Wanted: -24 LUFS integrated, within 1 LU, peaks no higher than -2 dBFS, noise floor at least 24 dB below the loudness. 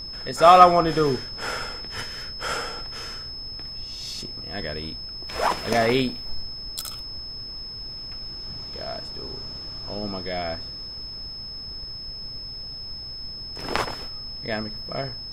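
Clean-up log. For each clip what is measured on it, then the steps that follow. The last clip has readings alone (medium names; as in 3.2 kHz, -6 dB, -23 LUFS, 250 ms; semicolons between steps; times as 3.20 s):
steady tone 5.2 kHz; tone level -34 dBFS; noise floor -36 dBFS; noise floor target -50 dBFS; loudness -26.0 LUFS; peak level -1.5 dBFS; loudness target -24.0 LUFS
-> band-stop 5.2 kHz, Q 30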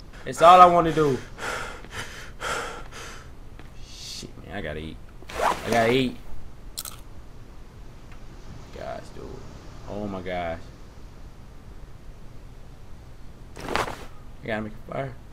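steady tone not found; noise floor -45 dBFS; noise floor target -47 dBFS
-> noise print and reduce 6 dB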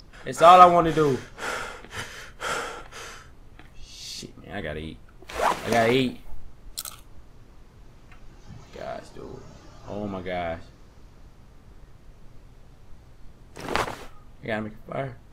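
noise floor -51 dBFS; loudness -23.0 LUFS; peak level -1.5 dBFS; loudness target -24.0 LUFS
-> trim -1 dB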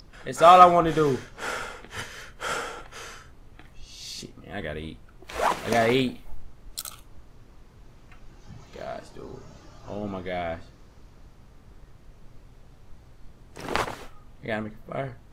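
loudness -24.0 LUFS; peak level -2.5 dBFS; noise floor -52 dBFS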